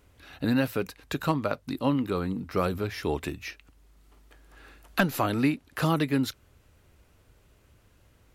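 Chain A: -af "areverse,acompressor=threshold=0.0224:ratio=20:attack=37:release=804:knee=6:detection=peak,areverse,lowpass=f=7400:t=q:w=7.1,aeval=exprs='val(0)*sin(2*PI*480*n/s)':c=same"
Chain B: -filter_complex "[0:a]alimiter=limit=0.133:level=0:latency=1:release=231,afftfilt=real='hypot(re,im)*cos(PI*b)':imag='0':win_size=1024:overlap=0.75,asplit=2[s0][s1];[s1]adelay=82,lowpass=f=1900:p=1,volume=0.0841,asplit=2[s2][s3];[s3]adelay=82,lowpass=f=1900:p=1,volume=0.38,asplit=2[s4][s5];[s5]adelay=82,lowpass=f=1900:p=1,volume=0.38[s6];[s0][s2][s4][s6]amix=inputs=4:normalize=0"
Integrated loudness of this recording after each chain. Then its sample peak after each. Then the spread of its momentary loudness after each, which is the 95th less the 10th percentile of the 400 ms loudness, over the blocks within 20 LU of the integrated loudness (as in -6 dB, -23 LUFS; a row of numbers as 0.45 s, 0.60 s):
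-40.5 LUFS, -35.5 LUFS; -18.0 dBFS, -13.0 dBFS; 20 LU, 8 LU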